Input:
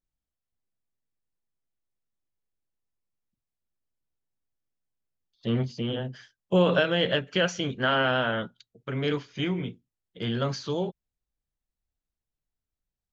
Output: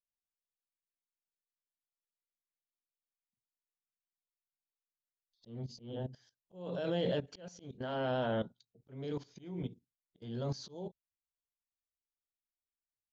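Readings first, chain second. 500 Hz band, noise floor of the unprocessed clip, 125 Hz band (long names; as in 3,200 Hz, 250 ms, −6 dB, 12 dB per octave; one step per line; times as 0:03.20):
−10.5 dB, below −85 dBFS, −11.0 dB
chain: output level in coarse steps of 16 dB
flat-topped bell 1,900 Hz −11 dB
noise reduction from a noise print of the clip's start 14 dB
volume swells 451 ms
level +1 dB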